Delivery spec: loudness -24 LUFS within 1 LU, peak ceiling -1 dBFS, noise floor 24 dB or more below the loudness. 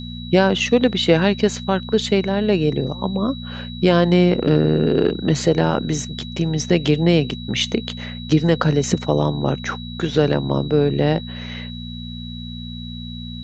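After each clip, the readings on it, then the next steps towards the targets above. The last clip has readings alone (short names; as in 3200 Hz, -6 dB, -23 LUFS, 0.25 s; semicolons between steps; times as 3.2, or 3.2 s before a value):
hum 60 Hz; harmonics up to 240 Hz; hum level -30 dBFS; steady tone 3900 Hz; tone level -36 dBFS; loudness -19.0 LUFS; peak -2.0 dBFS; loudness target -24.0 LUFS
-> de-hum 60 Hz, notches 4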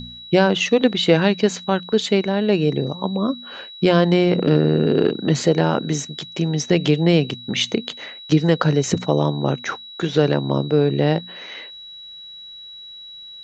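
hum none; steady tone 3900 Hz; tone level -36 dBFS
-> notch 3900 Hz, Q 30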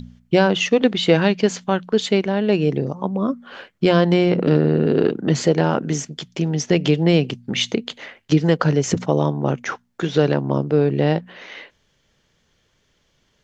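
steady tone none; loudness -19.5 LUFS; peak -2.5 dBFS; loudness target -24.0 LUFS
-> gain -4.5 dB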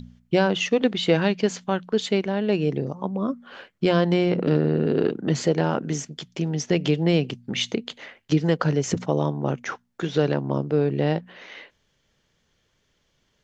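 loudness -24.0 LUFS; peak -7.0 dBFS; noise floor -70 dBFS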